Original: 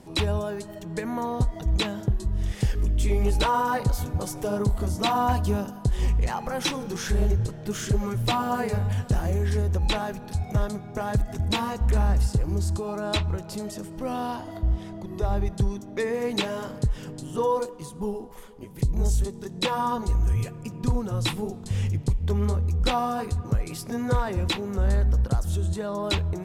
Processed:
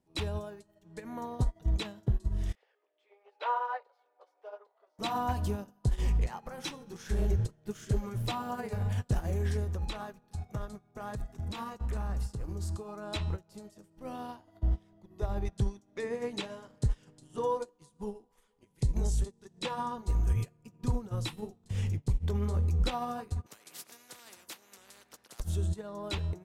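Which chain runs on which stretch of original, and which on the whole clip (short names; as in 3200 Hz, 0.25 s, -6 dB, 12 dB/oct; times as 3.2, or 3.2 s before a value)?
2.55–4.99 steep high-pass 490 Hz + air absorption 340 m
9.64–13.08 bell 1200 Hz +6 dB 0.28 oct + notches 50/100/150 Hz + compressor 10:1, threshold -23 dBFS
15.45–19.97 LPF 11000 Hz 24 dB/oct + mismatched tape noise reduction encoder only
23.46–25.4 HPF 280 Hz 24 dB/oct + spectral compressor 4:1
whole clip: de-hum 264.6 Hz, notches 39; limiter -18.5 dBFS; upward expander 2.5:1, over -40 dBFS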